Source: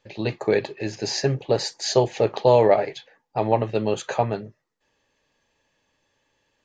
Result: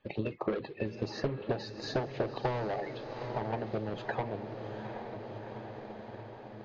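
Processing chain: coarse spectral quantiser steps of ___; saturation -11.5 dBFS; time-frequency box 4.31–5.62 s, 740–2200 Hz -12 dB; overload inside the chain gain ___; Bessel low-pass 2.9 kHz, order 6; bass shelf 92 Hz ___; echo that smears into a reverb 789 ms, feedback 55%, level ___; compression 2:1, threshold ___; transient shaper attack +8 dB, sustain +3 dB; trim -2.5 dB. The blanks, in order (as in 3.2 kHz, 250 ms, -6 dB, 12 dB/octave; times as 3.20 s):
30 dB, 19.5 dB, +2.5 dB, -9 dB, -39 dBFS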